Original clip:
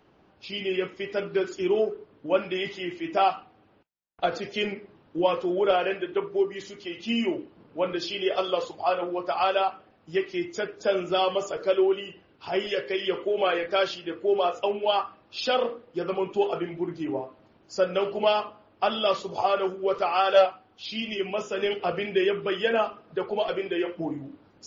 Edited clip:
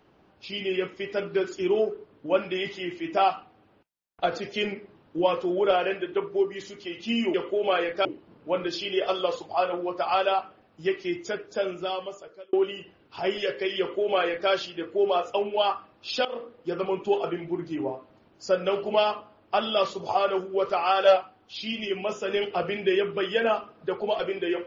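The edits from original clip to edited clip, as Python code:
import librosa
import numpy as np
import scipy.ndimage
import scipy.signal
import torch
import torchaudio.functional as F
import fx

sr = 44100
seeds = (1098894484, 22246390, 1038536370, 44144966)

y = fx.edit(x, sr, fx.fade_out_span(start_s=10.48, length_s=1.34),
    fx.duplicate(start_s=13.08, length_s=0.71, to_s=7.34),
    fx.fade_in_from(start_s=15.54, length_s=0.33, floor_db=-16.0), tone=tone)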